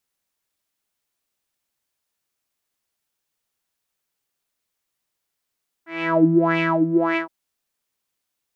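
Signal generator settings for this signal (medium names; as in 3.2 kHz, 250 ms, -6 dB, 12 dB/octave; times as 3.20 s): synth patch with filter wobble E4, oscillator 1 saw, interval -12 st, oscillator 2 level -8 dB, filter lowpass, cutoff 420 Hz, Q 5.2, filter envelope 2 oct, filter decay 0.10 s, filter sustain 45%, attack 411 ms, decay 0.11 s, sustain -4.5 dB, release 0.12 s, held 1.30 s, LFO 1.7 Hz, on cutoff 1.7 oct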